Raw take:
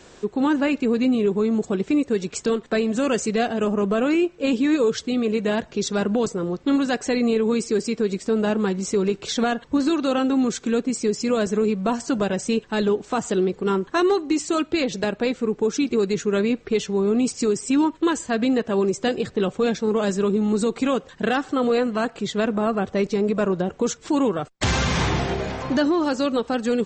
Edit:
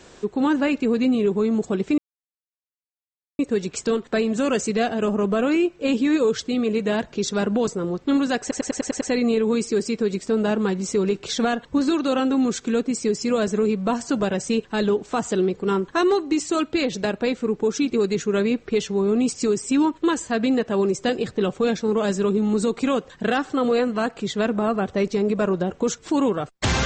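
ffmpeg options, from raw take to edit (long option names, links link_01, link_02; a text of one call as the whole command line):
ffmpeg -i in.wav -filter_complex "[0:a]asplit=8[link_01][link_02][link_03][link_04][link_05][link_06][link_07][link_08];[link_01]atrim=end=1.98,asetpts=PTS-STARTPTS,afade=type=out:start_time=1.976:duration=0.004:curve=hsin,apad=pad_dur=1.41[link_09];[link_02]atrim=start=1.98:end=7.102,asetpts=PTS-STARTPTS,afade=type=in:duration=0.004:curve=hsin[link_10];[link_03]atrim=start=6.998:end=7.102[link_11];[link_04]atrim=start=6.998:end=7.102[link_12];[link_05]atrim=start=6.998:end=7.102[link_13];[link_06]atrim=start=6.998:end=7.102[link_14];[link_07]atrim=start=6.998:end=7.102[link_15];[link_08]atrim=start=6.998[link_16];[link_09][link_10]concat=n=2:v=0:a=1[link_17];[link_17][link_11]acrossfade=duration=0.004:curve1=hsin:curve2=hsin[link_18];[link_18][link_12]acrossfade=duration=0.004:curve1=hsin:curve2=hsin[link_19];[link_19][link_13]acrossfade=duration=0.004:curve1=hsin:curve2=hsin[link_20];[link_20][link_14]acrossfade=duration=0.004:curve1=hsin:curve2=hsin[link_21];[link_21][link_15]acrossfade=duration=0.004:curve1=hsin:curve2=hsin[link_22];[link_22][link_16]acrossfade=duration=0.004:curve1=hsin:curve2=hsin" out.wav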